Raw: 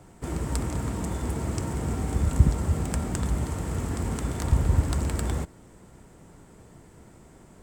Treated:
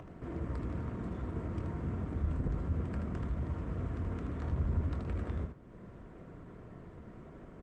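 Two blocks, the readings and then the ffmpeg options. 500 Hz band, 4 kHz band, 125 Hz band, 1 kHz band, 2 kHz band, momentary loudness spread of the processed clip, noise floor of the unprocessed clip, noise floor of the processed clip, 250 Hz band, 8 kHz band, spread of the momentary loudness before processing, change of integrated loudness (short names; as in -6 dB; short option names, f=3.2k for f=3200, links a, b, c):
-8.5 dB, under -15 dB, -9.0 dB, -11.0 dB, -11.0 dB, 16 LU, -52 dBFS, -52 dBFS, -8.0 dB, under -30 dB, 8 LU, -9.5 dB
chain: -af "lowpass=2.2k,acompressor=mode=upward:threshold=-32dB:ratio=2.5,asoftclip=type=tanh:threshold=-20dB,flanger=delay=6.2:depth=5.2:regen=-86:speed=0.8:shape=triangular,asuperstop=centerf=840:order=4:qfactor=4.7,aecho=1:1:24|78:0.299|0.531,volume=-3dB" -ar 48000 -c:a libopus -b:a 20k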